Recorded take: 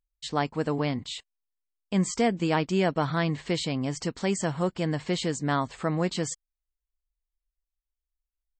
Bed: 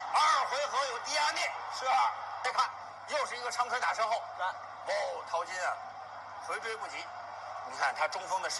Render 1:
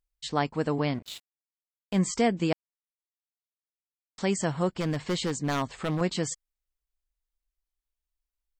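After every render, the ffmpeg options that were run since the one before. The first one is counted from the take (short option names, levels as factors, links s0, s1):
-filter_complex "[0:a]asettb=1/sr,asplit=3[s0][s1][s2];[s0]atrim=end=0.944[s3];[s1]atrim=start=0.94:end=1.99,asetpts=PTS-STARTPTS,afade=t=in:d=0.004:c=qsin,afade=t=out:st=1.046:d=0.004:c=qsin,aeval=exprs='sgn(val(0))*max(abs(val(0))-0.00891,0)':c=same[s4];[s2]atrim=start=1.986[s5];[s3][s4]acrossfade=d=0.004:c1=hsin:c2=qsin[s6];[s6][s5]acrossfade=d=0.004:c1=qsin:c2=hsin,asettb=1/sr,asplit=3[s7][s8][s9];[s7]atrim=end=4.804[s10];[s8]atrim=start=4.8:end=6.01,asetpts=PTS-STARTPTS,afade=t=in:d=0.004:c=qsin,afade=t=out:st=1.206:d=0.004:c=qsin,aeval=exprs='0.0891*(abs(mod(val(0)/0.0891+3,4)-2)-1)':c=same[s11];[s9]atrim=start=6.006[s12];[s10][s11]acrossfade=d=0.004:c1=hsin:c2=qsin[s13];[s13][s12]acrossfade=d=0.004:c1=qsin:c2=hsin,asplit=3[s14][s15][s16];[s14]atrim=end=2.53,asetpts=PTS-STARTPTS,afade=t=out:st=2.526:d=0.004:c=hsin[s17];[s15]atrim=start=2.53:end=4.18,asetpts=PTS-STARTPTS,volume=0[s18];[s16]atrim=start=4.18,asetpts=PTS-STARTPTS,afade=t=in:d=0.004:c=hsin[s19];[s17][s18][s19]concat=n=3:v=0:a=1"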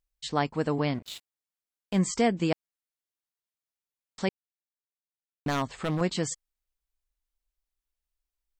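-filter_complex "[0:a]asplit=3[s0][s1][s2];[s0]atrim=end=4.29,asetpts=PTS-STARTPTS,afade=t=out:st=4.286:d=0.004:c=hsin[s3];[s1]atrim=start=4.29:end=5.46,asetpts=PTS-STARTPTS,volume=0[s4];[s2]atrim=start=5.46,asetpts=PTS-STARTPTS,afade=t=in:d=0.004:c=hsin[s5];[s3][s4][s5]concat=n=3:v=0:a=1"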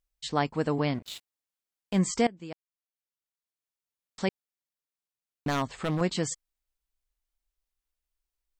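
-filter_complex "[0:a]asplit=2[s0][s1];[s0]atrim=end=2.27,asetpts=PTS-STARTPTS,afade=t=out:st=2.266:d=0.004:c=hsin:silence=0.0944061[s2];[s1]atrim=start=2.27,asetpts=PTS-STARTPTS,afade=t=in:d=1.98:silence=0.0944061[s3];[s2][s3]concat=n=2:v=0:a=1"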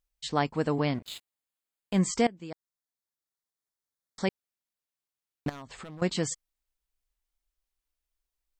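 -filter_complex "[0:a]asettb=1/sr,asplit=3[s0][s1][s2];[s0]atrim=end=1.054[s3];[s1]atrim=start=1.05:end=1.98,asetpts=PTS-STARTPTS,afade=t=in:d=0.004:c=qsin,afade=t=out:st=0.926:d=0.004:c=qsin,bandreject=f=5700:w=5.2[s4];[s2]atrim=start=1.976[s5];[s3][s4]acrossfade=d=0.004:c1=hsin:c2=qsin[s6];[s6][s5]acrossfade=d=0.004:c1=qsin:c2=hsin,asettb=1/sr,asplit=3[s7][s8][s9];[s7]atrim=end=2.504[s10];[s8]atrim=start=2.5:end=4.25,asetpts=PTS-STARTPTS,afade=t=in:d=0.004:c=qsin,afade=t=out:st=1.746:d=0.004:c=qsin,asuperstop=centerf=2700:order=4:qfactor=2.3[s11];[s9]atrim=start=4.246[s12];[s10][s11]acrossfade=d=0.004:c1=hsin:c2=qsin[s13];[s13][s12]acrossfade=d=0.004:c1=qsin:c2=hsin,asettb=1/sr,asplit=3[s14][s15][s16];[s14]atrim=end=5.494[s17];[s15]atrim=start=5.49:end=6.02,asetpts=PTS-STARTPTS,afade=t=in:d=0.004:c=qsin,afade=t=out:st=0.526:d=0.004:c=qsin,acompressor=threshold=0.01:ratio=12:attack=3.2:release=140:knee=1:detection=peak[s18];[s16]atrim=start=6.016[s19];[s17][s18]acrossfade=d=0.004:c1=hsin:c2=qsin[s20];[s20][s19]acrossfade=d=0.004:c1=qsin:c2=hsin"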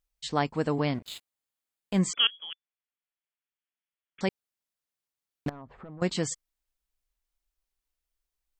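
-filter_complex "[0:a]asettb=1/sr,asplit=3[s0][s1][s2];[s0]atrim=end=2.134[s3];[s1]atrim=start=2.13:end=4.21,asetpts=PTS-STARTPTS,afade=t=in:d=0.004:c=qsin,afade=t=out:st=2.076:d=0.004:c=qsin,lowpass=f=3000:t=q:w=0.5098,lowpass=f=3000:t=q:w=0.6013,lowpass=f=3000:t=q:w=0.9,lowpass=f=3000:t=q:w=2.563,afreqshift=-3500[s4];[s2]atrim=start=4.206[s5];[s3][s4]acrossfade=d=0.004:c1=hsin:c2=qsin[s6];[s6][s5]acrossfade=d=0.004:c1=qsin:c2=hsin,asettb=1/sr,asplit=3[s7][s8][s9];[s7]atrim=end=5.494[s10];[s8]atrim=start=5.49:end=6.01,asetpts=PTS-STARTPTS,afade=t=in:d=0.004:c=qsin,afade=t=out:st=0.516:d=0.004:c=qsin,lowpass=1100[s11];[s9]atrim=start=6.006[s12];[s10][s11]acrossfade=d=0.004:c1=hsin:c2=qsin[s13];[s13][s12]acrossfade=d=0.004:c1=qsin:c2=hsin"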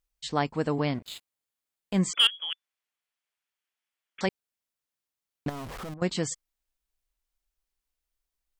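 -filter_complex "[0:a]asplit=3[s0][s1][s2];[s0]afade=t=out:st=2.14:d=0.02[s3];[s1]asplit=2[s4][s5];[s5]highpass=f=720:p=1,volume=3.98,asoftclip=type=tanh:threshold=0.266[s6];[s4][s6]amix=inputs=2:normalize=0,lowpass=f=6300:p=1,volume=0.501,afade=t=in:st=2.14:d=0.02,afade=t=out:st=4.25:d=0.02[s7];[s2]afade=t=in:st=4.25:d=0.02[s8];[s3][s7][s8]amix=inputs=3:normalize=0,asettb=1/sr,asplit=3[s9][s10][s11];[s9]atrim=end=5.494[s12];[s10]atrim=start=5.49:end=5.94,asetpts=PTS-STARTPTS,afade=t=in:d=0.004:c=qsin,afade=t=out:st=0.446:d=0.004:c=qsin,aeval=exprs='val(0)+0.5*0.0168*sgn(val(0))':c=same[s13];[s11]atrim=start=5.936[s14];[s12][s13]acrossfade=d=0.004:c1=hsin:c2=qsin[s15];[s15][s14]acrossfade=d=0.004:c1=qsin:c2=hsin"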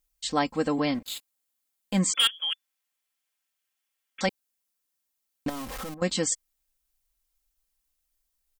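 -af "highshelf=f=5500:g=9.5,aecho=1:1:3.8:0.64"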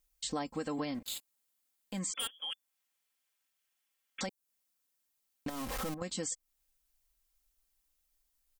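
-filter_complex "[0:a]acrossover=split=930|6200[s0][s1][s2];[s0]acompressor=threshold=0.0282:ratio=4[s3];[s1]acompressor=threshold=0.01:ratio=4[s4];[s2]acompressor=threshold=0.0224:ratio=4[s5];[s3][s4][s5]amix=inputs=3:normalize=0,alimiter=level_in=1.26:limit=0.0631:level=0:latency=1:release=288,volume=0.794"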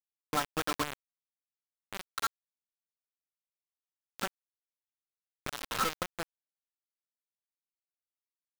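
-af "lowpass=f=1400:t=q:w=5.5,acrusher=bits=4:mix=0:aa=0.000001"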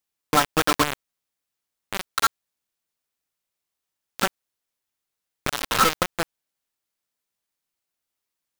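-af "volume=3.98"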